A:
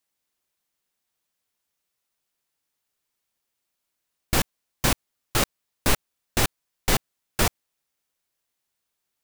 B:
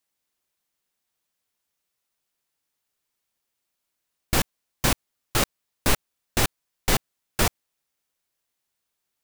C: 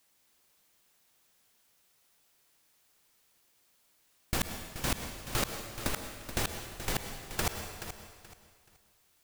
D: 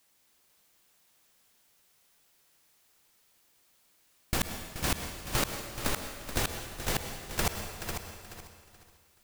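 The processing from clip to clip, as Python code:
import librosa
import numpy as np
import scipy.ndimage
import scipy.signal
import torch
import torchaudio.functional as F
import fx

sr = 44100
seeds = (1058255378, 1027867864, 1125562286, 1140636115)

y1 = x
y2 = fx.over_compress(y1, sr, threshold_db=-30.0, ratio=-1.0)
y2 = fx.echo_feedback(y2, sr, ms=428, feedback_pct=26, wet_db=-11.0)
y2 = fx.rev_plate(y2, sr, seeds[0], rt60_s=1.4, hf_ratio=0.95, predelay_ms=90, drr_db=7.0)
y3 = fx.echo_feedback(y2, sr, ms=497, feedback_pct=16, wet_db=-8.0)
y3 = F.gain(torch.from_numpy(y3), 1.5).numpy()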